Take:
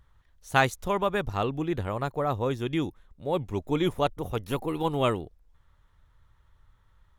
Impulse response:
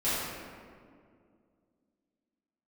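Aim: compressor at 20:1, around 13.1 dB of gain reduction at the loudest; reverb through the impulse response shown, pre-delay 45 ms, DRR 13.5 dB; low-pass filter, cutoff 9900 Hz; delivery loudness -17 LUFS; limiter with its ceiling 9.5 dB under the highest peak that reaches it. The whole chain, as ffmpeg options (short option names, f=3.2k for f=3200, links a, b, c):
-filter_complex "[0:a]lowpass=9.9k,acompressor=threshold=-28dB:ratio=20,alimiter=level_in=1dB:limit=-24dB:level=0:latency=1,volume=-1dB,asplit=2[a][b];[1:a]atrim=start_sample=2205,adelay=45[c];[b][c]afir=irnorm=-1:irlink=0,volume=-24dB[d];[a][d]amix=inputs=2:normalize=0,volume=20dB"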